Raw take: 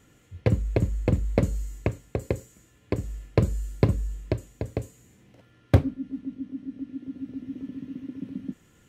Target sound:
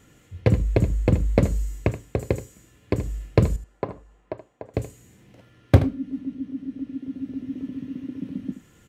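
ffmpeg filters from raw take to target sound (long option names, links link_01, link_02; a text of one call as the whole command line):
ffmpeg -i in.wav -filter_complex "[0:a]asettb=1/sr,asplit=3[link_01][link_02][link_03];[link_01]atrim=end=3.564[link_04];[link_02]atrim=start=3.56:end=4.74,asetpts=PTS-STARTPTS,afade=type=in:duration=0.004:curve=qsin,afade=type=out:start_time=1.176:duration=0.004:curve=qsin,bandpass=frequency=850:width_type=q:width=1.5:csg=0[link_05];[link_03]atrim=start=4.736[link_06];[link_04][link_05]acrossfade=duration=0.004:curve1=hsin:curve2=qsin[link_07];[link_07][link_06]acrossfade=duration=0.004:curve1=qsin:curve2=hsin,aecho=1:1:77:0.237,volume=3.5dB" out.wav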